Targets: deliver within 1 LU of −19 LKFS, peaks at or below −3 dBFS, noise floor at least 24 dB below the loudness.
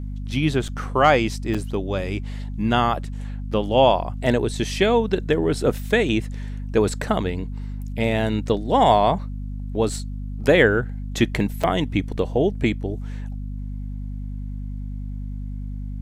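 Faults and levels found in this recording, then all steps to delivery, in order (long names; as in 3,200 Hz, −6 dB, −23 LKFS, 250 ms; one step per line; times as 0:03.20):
number of dropouts 3; longest dropout 6.0 ms; mains hum 50 Hz; hum harmonics up to 250 Hz; level of the hum −27 dBFS; integrated loudness −22.0 LKFS; sample peak −2.5 dBFS; target loudness −19.0 LKFS
→ repair the gap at 0:00.68/0:01.54/0:11.63, 6 ms
hum removal 50 Hz, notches 5
level +3 dB
brickwall limiter −3 dBFS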